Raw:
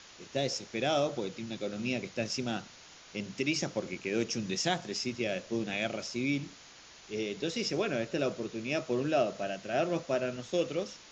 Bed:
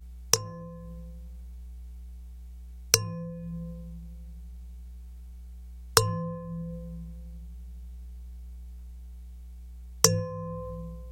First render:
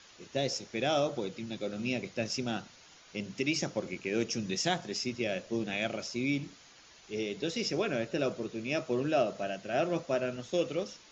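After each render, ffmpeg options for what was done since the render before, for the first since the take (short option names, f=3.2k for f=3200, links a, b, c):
-af "afftdn=nr=6:nf=-54"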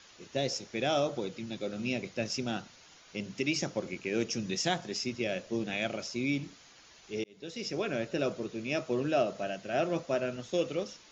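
-filter_complex "[0:a]asplit=2[a][b];[a]atrim=end=7.24,asetpts=PTS-STARTPTS,afade=t=out:st=7.236:d=0.004:c=hsin[c];[b]atrim=start=7.24,asetpts=PTS-STARTPTS,afade=t=in:d=0.97:c=qsin[d];[c][d]concat=n=2:v=0:a=1"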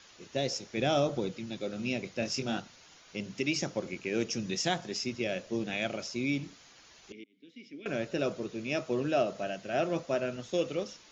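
-filter_complex "[0:a]asettb=1/sr,asplit=3[a][b][c];[a]atrim=end=0.774[d];[b]atrim=start=0.77:end=1.32,asetpts=PTS-STARTPTS,afade=t=in:d=0.004:c=qsin,afade=t=out:st=0.546:d=0.004:c=qsin,lowshelf=f=250:g=7.5[e];[c]atrim=start=1.316[f];[d][e]acrossfade=d=0.004:c1=hsin:c2=qsin[g];[g][f]acrossfade=d=0.004:c1=qsin:c2=hsin,asettb=1/sr,asplit=3[h][i][j];[h]atrim=end=2.204[k];[i]atrim=start=2.2:end=2.6,asetpts=PTS-STARTPTS,afade=t=in:d=0.004:c=qsin,afade=t=out:st=0.396:d=0.004:c=qsin,asplit=2[l][m];[m]adelay=22,volume=-5.5dB[n];[l][n]amix=inputs=2:normalize=0,atrim=end_sample=17640[o];[j]atrim=start=2.596[p];[k][o]acrossfade=d=0.004:c1=hsin:c2=qsin[q];[q][p]acrossfade=d=0.004:c1=qsin:c2=hsin,asettb=1/sr,asplit=3[r][s][t];[r]atrim=end=7.124[u];[s]atrim=start=7.12:end=7.86,asetpts=PTS-STARTPTS,afade=t=in:d=0.004:c=qsin,afade=t=out:st=0.736:d=0.004:c=qsin,asplit=3[v][w][x];[v]bandpass=f=270:t=q:w=8,volume=0dB[y];[w]bandpass=f=2.29k:t=q:w=8,volume=-6dB[z];[x]bandpass=f=3.01k:t=q:w=8,volume=-9dB[aa];[y][z][aa]amix=inputs=3:normalize=0[ab];[t]atrim=start=7.856[ac];[u][ab]acrossfade=d=0.004:c1=hsin:c2=qsin[ad];[ad][ac]acrossfade=d=0.004:c1=qsin:c2=hsin"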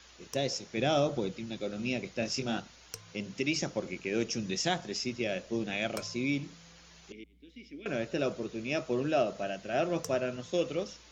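-filter_complex "[1:a]volume=-22.5dB[a];[0:a][a]amix=inputs=2:normalize=0"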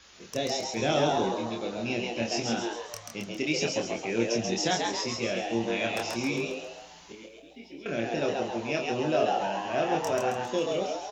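-filter_complex "[0:a]asplit=2[a][b];[b]adelay=26,volume=-3dB[c];[a][c]amix=inputs=2:normalize=0,asplit=2[d][e];[e]asplit=6[f][g][h][i][j][k];[f]adelay=135,afreqshift=120,volume=-3dB[l];[g]adelay=270,afreqshift=240,volume=-9.4dB[m];[h]adelay=405,afreqshift=360,volume=-15.8dB[n];[i]adelay=540,afreqshift=480,volume=-22.1dB[o];[j]adelay=675,afreqshift=600,volume=-28.5dB[p];[k]adelay=810,afreqshift=720,volume=-34.9dB[q];[l][m][n][o][p][q]amix=inputs=6:normalize=0[r];[d][r]amix=inputs=2:normalize=0"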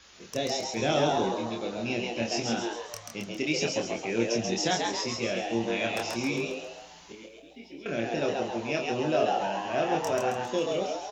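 -af anull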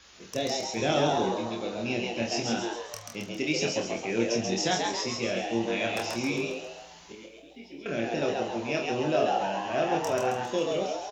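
-filter_complex "[0:a]asplit=2[a][b];[b]adelay=47,volume=-12dB[c];[a][c]amix=inputs=2:normalize=0"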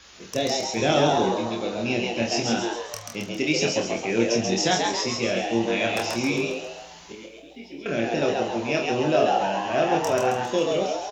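-af "volume=5dB"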